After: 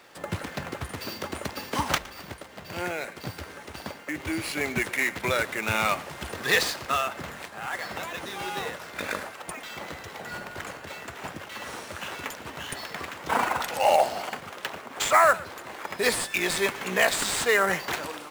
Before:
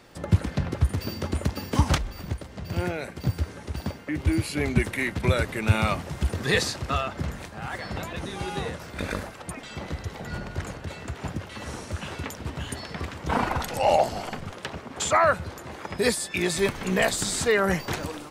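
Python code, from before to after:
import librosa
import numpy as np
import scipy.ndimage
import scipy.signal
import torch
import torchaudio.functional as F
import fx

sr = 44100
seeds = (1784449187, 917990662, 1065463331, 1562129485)

p1 = fx.highpass(x, sr, hz=900.0, slope=6)
p2 = fx.sample_hold(p1, sr, seeds[0], rate_hz=9200.0, jitter_pct=20)
p3 = p1 + (p2 * 10.0 ** (-3.0 / 20.0))
y = p3 + 10.0 ** (-20.5 / 20.0) * np.pad(p3, (int(114 * sr / 1000.0), 0))[:len(p3)]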